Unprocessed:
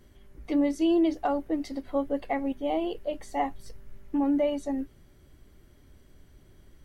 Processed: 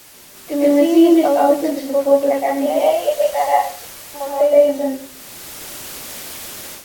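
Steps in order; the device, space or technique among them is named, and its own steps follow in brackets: 2.66–4.41 s: inverse Chebyshev high-pass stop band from 160 Hz, stop band 60 dB; filmed off a television (band-pass 220–6300 Hz; peaking EQ 570 Hz +9.5 dB 0.47 oct; reverberation RT60 0.45 s, pre-delay 119 ms, DRR -5.5 dB; white noise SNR 21 dB; level rider gain up to 11.5 dB; trim -1 dB; AAC 64 kbps 48 kHz)

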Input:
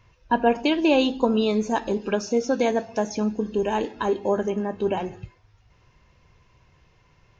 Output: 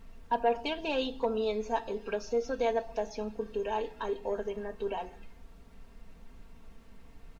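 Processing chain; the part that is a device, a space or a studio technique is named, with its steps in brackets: aircraft cabin announcement (band-pass 450–4200 Hz; saturation -12 dBFS, distortion -21 dB; brown noise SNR 15 dB); dynamic bell 1.7 kHz, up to -4 dB, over -39 dBFS, Q 1.1; comb 4.4 ms, depth 70%; trim -7 dB

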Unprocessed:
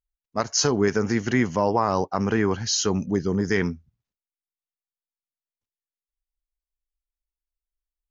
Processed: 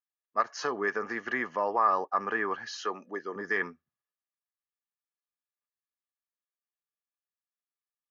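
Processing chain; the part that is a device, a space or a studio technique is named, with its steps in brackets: 2.83–3.36 s: high-pass 270 Hz 12 dB/octave; tin-can telephone (band-pass 460–2800 Hz; small resonant body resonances 1.2/1.7 kHz, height 14 dB, ringing for 35 ms); trim -6 dB

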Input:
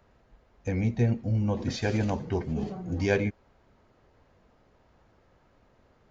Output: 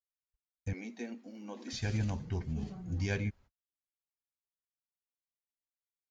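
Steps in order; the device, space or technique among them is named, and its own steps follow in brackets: 0.73–1.73 s: steep high-pass 240 Hz 48 dB/octave; gate -49 dBFS, range -52 dB; smiley-face EQ (bass shelf 170 Hz +7 dB; peaking EQ 490 Hz -8.5 dB 2 oct; treble shelf 5.3 kHz +7 dB); trim -7 dB

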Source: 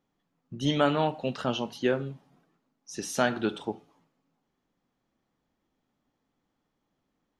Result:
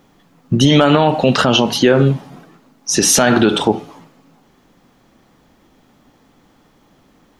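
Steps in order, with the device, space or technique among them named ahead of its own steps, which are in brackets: loud club master (compression 1.5:1, threshold -32 dBFS, peak gain reduction 5.5 dB; hard clipper -17 dBFS, distortion -33 dB; loudness maximiser +26.5 dB); trim -1 dB

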